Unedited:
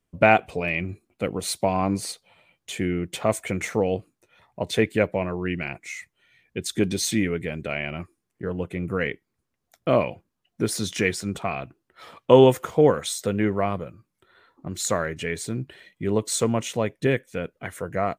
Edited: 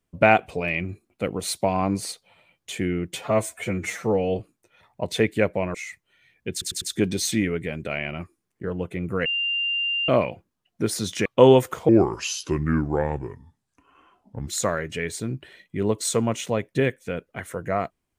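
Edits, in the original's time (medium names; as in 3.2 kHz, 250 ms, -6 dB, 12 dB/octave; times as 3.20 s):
3.15–3.98 s: stretch 1.5×
5.33–5.84 s: delete
6.61 s: stutter 0.10 s, 4 plays
9.05–9.88 s: bleep 2.79 kHz -22 dBFS
11.05–12.17 s: delete
12.80–14.74 s: speed 75%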